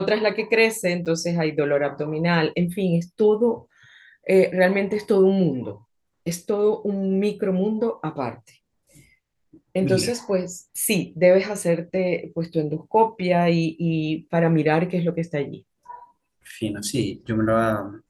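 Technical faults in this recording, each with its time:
0:01.05–0:01.06: drop-out 8 ms

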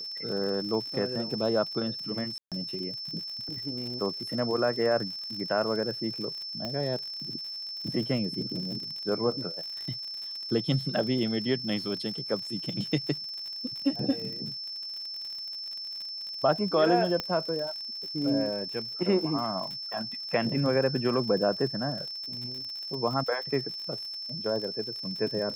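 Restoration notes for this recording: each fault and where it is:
surface crackle 71 per second −36 dBFS
whistle 5,300 Hz −35 dBFS
0:02.38–0:02.52: drop-out 137 ms
0:06.65: click −20 dBFS
0:17.20: click −16 dBFS

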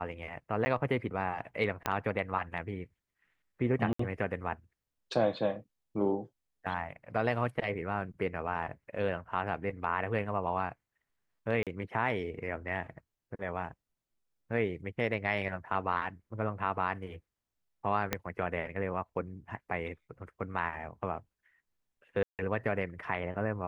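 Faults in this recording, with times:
0:00.65–0:00.66: drop-out 10 ms
0:01.86: click −15 dBFS
0:03.93–0:03.99: drop-out 64 ms
0:11.63–0:11.67: drop-out 37 ms
0:18.13: click −13 dBFS
0:22.23–0:22.39: drop-out 158 ms

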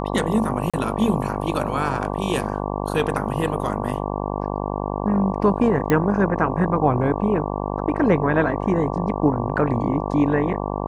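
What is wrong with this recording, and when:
mains buzz 50 Hz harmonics 23 −26 dBFS
0:00.70–0:00.74: drop-out 36 ms
0:05.90: click −7 dBFS

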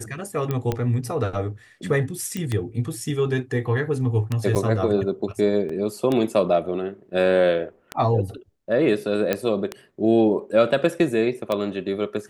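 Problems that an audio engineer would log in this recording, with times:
scratch tick 33 1/3 rpm −11 dBFS
0:00.51: click −13 dBFS
0:02.37: click −15 dBFS
0:04.55–0:04.56: drop-out 8.3 ms
0:05.69: drop-out 4.5 ms
0:09.33: click −8 dBFS

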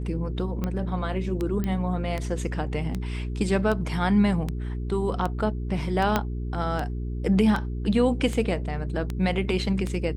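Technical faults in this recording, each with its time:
mains hum 60 Hz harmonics 7 −30 dBFS
scratch tick 78 rpm −16 dBFS
0:01.64: click −16 dBFS
0:06.16: click −8 dBFS

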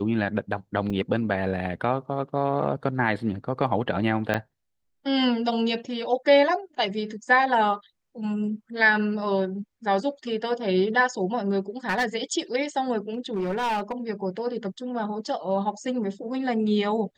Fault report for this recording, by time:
0:00.90: drop-out 2.8 ms
0:04.34: drop-out 4.2 ms
0:11.89–0:12.06: clipping −20 dBFS
0:13.14–0:13.92: clipping −23 dBFS

